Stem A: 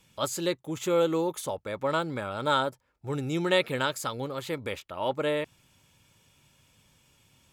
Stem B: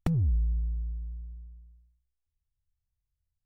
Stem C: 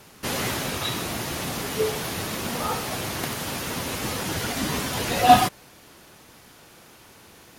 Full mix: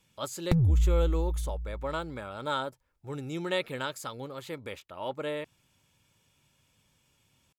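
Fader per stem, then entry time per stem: -6.0 dB, +3.0 dB, mute; 0.00 s, 0.45 s, mute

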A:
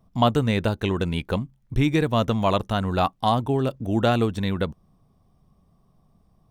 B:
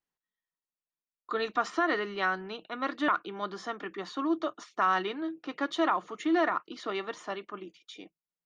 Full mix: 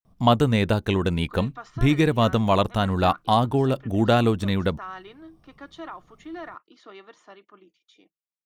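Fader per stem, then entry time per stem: +1.5 dB, -11.0 dB; 0.05 s, 0.00 s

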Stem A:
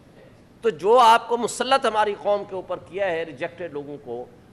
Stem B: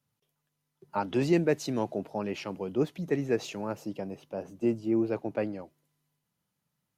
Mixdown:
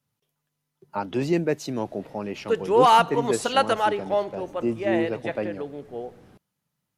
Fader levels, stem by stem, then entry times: -2.0 dB, +1.5 dB; 1.85 s, 0.00 s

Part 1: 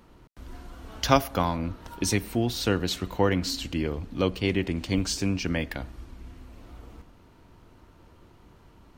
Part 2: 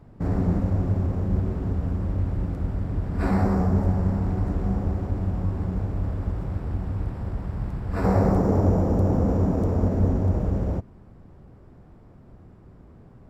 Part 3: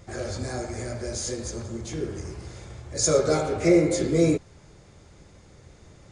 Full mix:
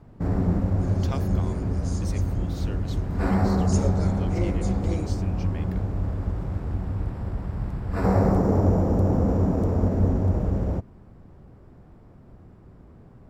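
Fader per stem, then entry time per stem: -15.5 dB, 0.0 dB, -13.0 dB; 0.00 s, 0.00 s, 0.70 s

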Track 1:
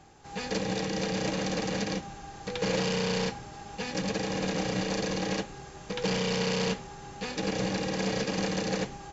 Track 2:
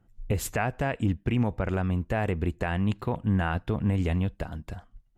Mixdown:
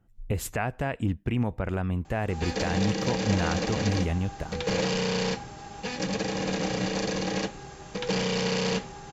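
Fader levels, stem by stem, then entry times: +1.5 dB, -1.5 dB; 2.05 s, 0.00 s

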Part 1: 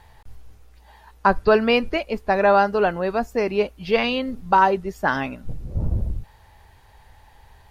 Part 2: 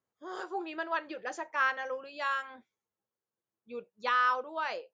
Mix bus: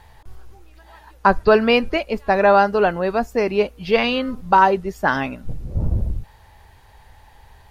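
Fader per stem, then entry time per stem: +2.5 dB, -17.5 dB; 0.00 s, 0.00 s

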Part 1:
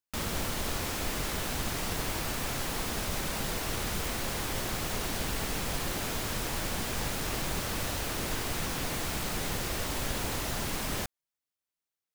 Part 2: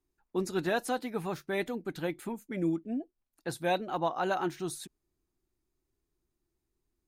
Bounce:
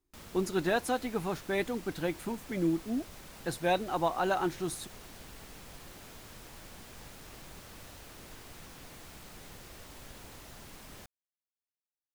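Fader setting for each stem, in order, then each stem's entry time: -16.5 dB, +1.0 dB; 0.00 s, 0.00 s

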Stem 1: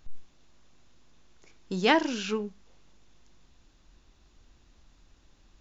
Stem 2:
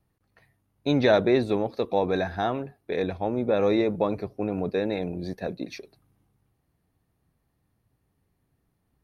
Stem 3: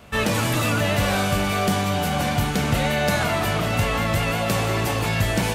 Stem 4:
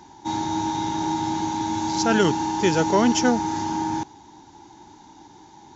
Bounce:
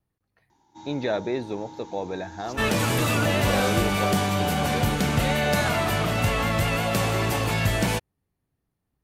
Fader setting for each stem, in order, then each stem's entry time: mute, -6.5 dB, -1.5 dB, -18.0 dB; mute, 0.00 s, 2.45 s, 0.50 s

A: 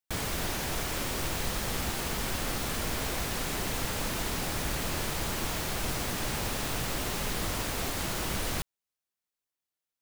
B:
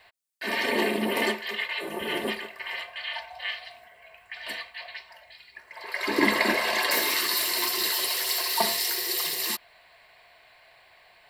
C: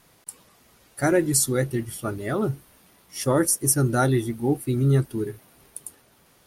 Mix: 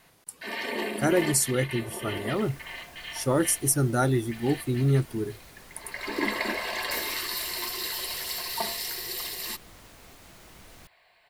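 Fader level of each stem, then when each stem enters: -18.5 dB, -6.0 dB, -3.0 dB; 2.25 s, 0.00 s, 0.00 s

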